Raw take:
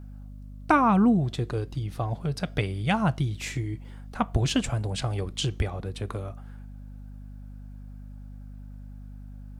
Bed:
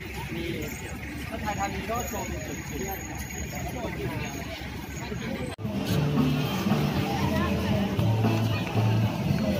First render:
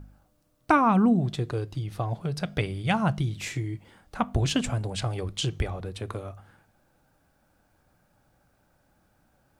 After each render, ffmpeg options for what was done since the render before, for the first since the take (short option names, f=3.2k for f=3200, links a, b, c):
-af "bandreject=f=50:t=h:w=4,bandreject=f=100:t=h:w=4,bandreject=f=150:t=h:w=4,bandreject=f=200:t=h:w=4,bandreject=f=250:t=h:w=4"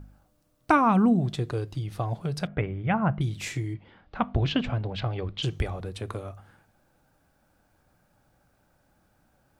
-filter_complex "[0:a]asettb=1/sr,asplit=3[a][b][c];[a]atrim=end=2.474[d];[b]atrim=start=2.47:end=3.21,asetpts=PTS-STARTPTS,afade=t=in:d=0.004:c=qsin,afade=t=out:st=0.736:d=0.004:c=qsin,lowpass=f=2.2k:w=0.5412,lowpass=f=2.2k:w=1.3066[e];[c]atrim=start=3.206[f];[d][e]acrossfade=d=0.004:c1=hsin:c2=qsin[g];[g][f]acrossfade=d=0.004:c1=qsin:c2=hsin,asplit=3[h][i][j];[h]afade=t=out:st=3.73:d=0.02[k];[i]lowpass=f=3.9k:w=0.5412,lowpass=f=3.9k:w=1.3066,afade=t=in:st=3.73:d=0.02,afade=t=out:st=5.42:d=0.02[l];[j]afade=t=in:st=5.42:d=0.02[m];[k][l][m]amix=inputs=3:normalize=0"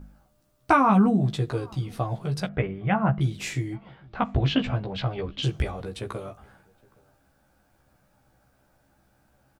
-filter_complex "[0:a]asplit=2[a][b];[b]adelay=15,volume=-3dB[c];[a][c]amix=inputs=2:normalize=0,asplit=2[d][e];[e]adelay=816.3,volume=-27dB,highshelf=f=4k:g=-18.4[f];[d][f]amix=inputs=2:normalize=0"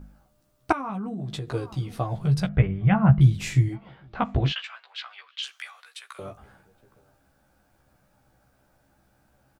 -filter_complex "[0:a]asettb=1/sr,asplit=3[a][b][c];[a]atrim=end=0.724[d];[b]atrim=start=0.72:end=1.54,asetpts=PTS-STARTPTS,afade=t=in:d=0.004:c=qsin,afade=t=out:st=0.816:d=0.004:c=qsin,acompressor=threshold=-28dB:ratio=16:attack=3.2:release=140:knee=1:detection=peak[e];[c]atrim=start=1.536[f];[d][e]acrossfade=d=0.004:c1=hsin:c2=qsin[g];[g][f]acrossfade=d=0.004:c1=qsin:c2=hsin,asplit=3[h][i][j];[h]afade=t=out:st=2.15:d=0.02[k];[i]asubboost=boost=5.5:cutoff=170,afade=t=in:st=2.15:d=0.02,afade=t=out:st=3.68:d=0.02[l];[j]afade=t=in:st=3.68:d=0.02[m];[k][l][m]amix=inputs=3:normalize=0,asettb=1/sr,asplit=3[n][o][p];[n]atrim=end=4.524[q];[o]atrim=start=4.52:end=6.19,asetpts=PTS-STARTPTS,afade=t=in:d=0.004:c=qsin,afade=t=out:st=1.666:d=0.004:c=qsin,highpass=f=1.3k:w=0.5412,highpass=f=1.3k:w=1.3066[r];[p]atrim=start=6.186[s];[q][r]acrossfade=d=0.004:c1=hsin:c2=qsin[t];[t][s]acrossfade=d=0.004:c1=qsin:c2=hsin"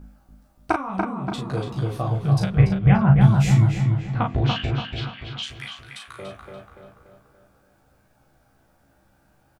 -filter_complex "[0:a]asplit=2[a][b];[b]adelay=36,volume=-4dB[c];[a][c]amix=inputs=2:normalize=0,asplit=2[d][e];[e]adelay=288,lowpass=f=2.9k:p=1,volume=-3.5dB,asplit=2[f][g];[g]adelay=288,lowpass=f=2.9k:p=1,volume=0.51,asplit=2[h][i];[i]adelay=288,lowpass=f=2.9k:p=1,volume=0.51,asplit=2[j][k];[k]adelay=288,lowpass=f=2.9k:p=1,volume=0.51,asplit=2[l][m];[m]adelay=288,lowpass=f=2.9k:p=1,volume=0.51,asplit=2[n][o];[o]adelay=288,lowpass=f=2.9k:p=1,volume=0.51,asplit=2[p][q];[q]adelay=288,lowpass=f=2.9k:p=1,volume=0.51[r];[d][f][h][j][l][n][p][r]amix=inputs=8:normalize=0"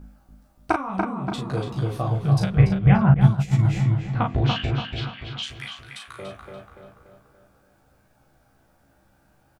-filter_complex "[0:a]asettb=1/sr,asplit=3[a][b][c];[a]atrim=end=3.144[d];[b]atrim=start=3.14:end=3.65,asetpts=PTS-STARTPTS,afade=t=in:d=0.004:c=qsin,afade=t=out:st=0.506:d=0.004:c=qsin,agate=range=-33dB:threshold=-11dB:ratio=3:release=100:detection=peak[e];[c]atrim=start=3.646[f];[d][e]acrossfade=d=0.004:c1=hsin:c2=qsin[g];[g][f]acrossfade=d=0.004:c1=qsin:c2=hsin"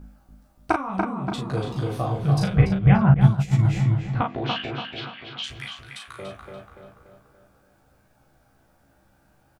-filter_complex "[0:a]asettb=1/sr,asplit=3[a][b][c];[a]atrim=end=1.604[d];[b]atrim=start=1.6:end=2.66,asetpts=PTS-STARTPTS,afade=t=in:d=0.004:c=qsin,afade=t=out:st=1.056:d=0.004:c=qsin,asplit=2[e][f];[f]adelay=40,volume=-5dB[g];[e][g]amix=inputs=2:normalize=0,atrim=end_sample=46746[h];[c]atrim=start=2.656[i];[d][h]acrossfade=d=0.004:c1=hsin:c2=qsin[j];[j][i]acrossfade=d=0.004:c1=qsin:c2=hsin,asettb=1/sr,asplit=3[k][l][m];[k]atrim=end=4.214[n];[l]atrim=start=4.21:end=5.44,asetpts=PTS-STARTPTS,afade=t=in:d=0.004:c=qsin,afade=t=out:st=1.226:d=0.004:c=qsin,highpass=240,lowpass=4.9k[o];[m]atrim=start=5.436[p];[n][o]acrossfade=d=0.004:c1=hsin:c2=qsin[q];[q][p]acrossfade=d=0.004:c1=qsin:c2=hsin"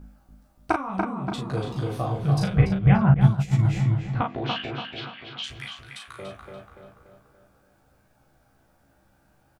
-af "volume=-1.5dB"